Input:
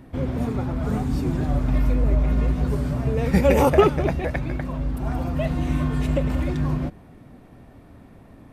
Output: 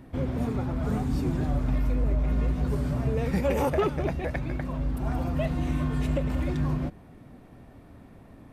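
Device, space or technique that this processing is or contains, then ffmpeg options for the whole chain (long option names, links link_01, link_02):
soft clipper into limiter: -af "asoftclip=type=tanh:threshold=-9.5dB,alimiter=limit=-15dB:level=0:latency=1:release=491,volume=-2.5dB"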